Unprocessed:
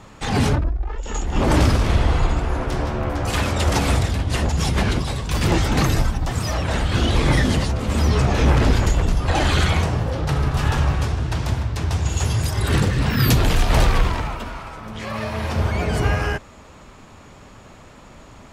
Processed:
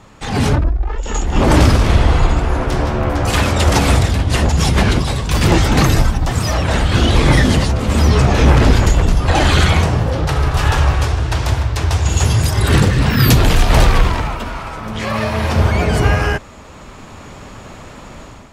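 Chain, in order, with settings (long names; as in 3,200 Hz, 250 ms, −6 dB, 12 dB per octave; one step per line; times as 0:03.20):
0:10.27–0:12.08: parametric band 190 Hz −9.5 dB 1.1 octaves
automatic gain control gain up to 9.5 dB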